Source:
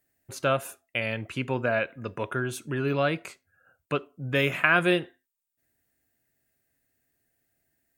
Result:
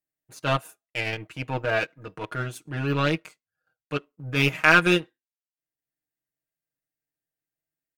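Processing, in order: power-law curve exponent 1.4; comb 6.4 ms, depth 88%; transient shaper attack -8 dB, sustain -4 dB; gain +8 dB

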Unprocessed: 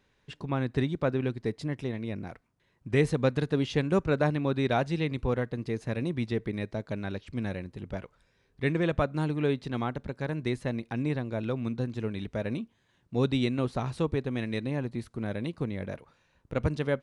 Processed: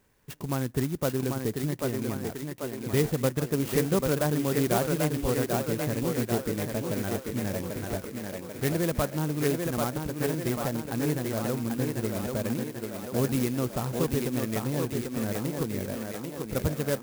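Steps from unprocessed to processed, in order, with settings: in parallel at -1.5 dB: compressor, threshold -33 dBFS, peak gain reduction 14 dB; on the sum: thinning echo 0.79 s, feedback 64%, high-pass 200 Hz, level -3 dB; clock jitter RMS 0.079 ms; gain -2.5 dB

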